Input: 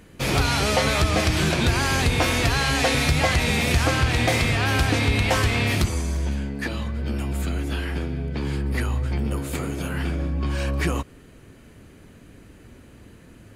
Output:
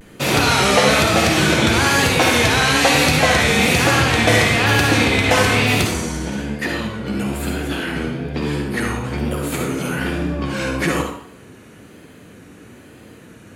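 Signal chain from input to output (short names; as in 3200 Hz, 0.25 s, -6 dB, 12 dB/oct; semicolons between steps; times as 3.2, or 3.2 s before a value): HPF 130 Hz 12 dB/oct; notch 4900 Hz, Q 18; vibrato 1.1 Hz 91 cents; reverb RT60 0.60 s, pre-delay 50 ms, DRR 1.5 dB; gain +5.5 dB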